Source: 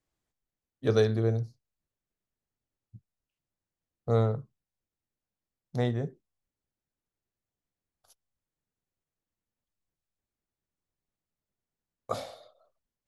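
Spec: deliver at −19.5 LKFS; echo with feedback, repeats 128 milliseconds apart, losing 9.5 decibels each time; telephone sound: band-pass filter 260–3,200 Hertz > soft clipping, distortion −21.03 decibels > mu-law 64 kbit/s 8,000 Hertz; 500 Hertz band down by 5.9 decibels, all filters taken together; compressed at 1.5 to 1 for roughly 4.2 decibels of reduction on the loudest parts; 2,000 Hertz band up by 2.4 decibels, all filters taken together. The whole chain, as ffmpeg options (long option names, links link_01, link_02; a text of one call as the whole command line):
ffmpeg -i in.wav -af "equalizer=frequency=500:width_type=o:gain=-6.5,equalizer=frequency=2000:width_type=o:gain=4,acompressor=threshold=-33dB:ratio=1.5,highpass=260,lowpass=3200,aecho=1:1:128|256|384|512:0.335|0.111|0.0365|0.012,asoftclip=threshold=-23.5dB,volume=21.5dB" -ar 8000 -c:a pcm_mulaw out.wav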